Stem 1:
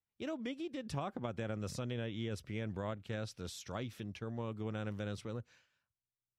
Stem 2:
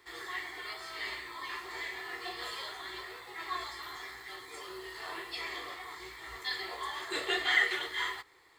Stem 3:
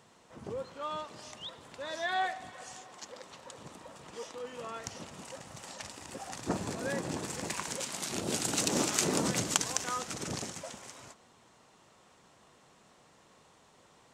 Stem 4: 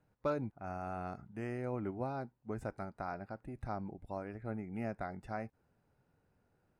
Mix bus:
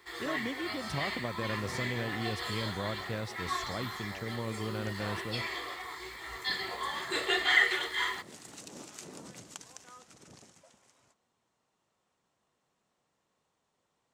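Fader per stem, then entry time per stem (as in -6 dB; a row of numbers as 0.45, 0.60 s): +3.0, +2.5, -17.5, -9.0 dB; 0.00, 0.00, 0.00, 0.00 s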